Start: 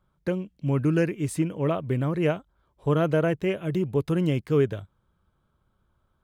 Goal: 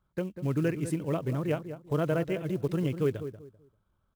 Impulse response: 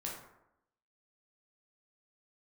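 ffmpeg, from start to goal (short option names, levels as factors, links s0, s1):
-filter_complex "[0:a]asplit=2[s0][s1];[s1]adelay=292,lowpass=f=1100:p=1,volume=0.316,asplit=2[s2][s3];[s3]adelay=292,lowpass=f=1100:p=1,volume=0.26,asplit=2[s4][s5];[s5]adelay=292,lowpass=f=1100:p=1,volume=0.26[s6];[s0][s2][s4][s6]amix=inputs=4:normalize=0,acrusher=bits=7:mode=log:mix=0:aa=0.000001,atempo=1.5,volume=0.562"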